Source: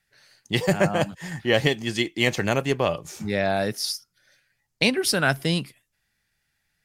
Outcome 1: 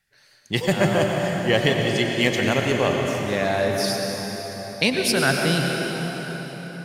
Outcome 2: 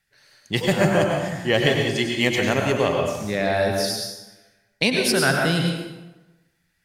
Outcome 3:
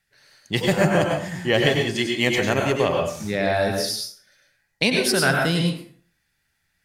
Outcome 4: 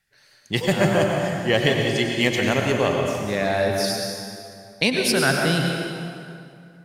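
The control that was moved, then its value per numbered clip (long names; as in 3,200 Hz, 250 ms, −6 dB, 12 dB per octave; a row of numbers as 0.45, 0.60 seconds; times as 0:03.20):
dense smooth reverb, RT60: 5.3, 1.1, 0.5, 2.5 seconds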